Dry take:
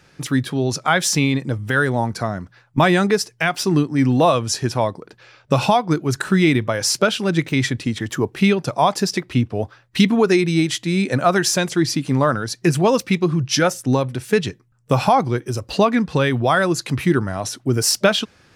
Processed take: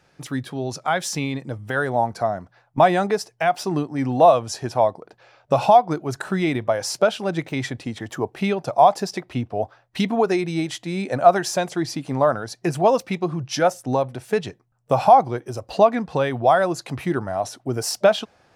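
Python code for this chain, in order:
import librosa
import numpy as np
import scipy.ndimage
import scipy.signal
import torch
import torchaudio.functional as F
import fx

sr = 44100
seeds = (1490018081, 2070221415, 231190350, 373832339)

y = fx.peak_eq(x, sr, hz=710.0, db=fx.steps((0.0, 7.5), (1.7, 14.0)), octaves=1.0)
y = y * librosa.db_to_amplitude(-8.5)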